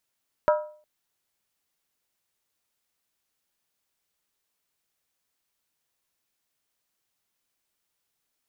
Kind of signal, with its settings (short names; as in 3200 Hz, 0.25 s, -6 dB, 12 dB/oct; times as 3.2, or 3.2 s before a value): skin hit length 0.36 s, lowest mode 606 Hz, decay 0.46 s, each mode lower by 5 dB, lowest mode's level -15 dB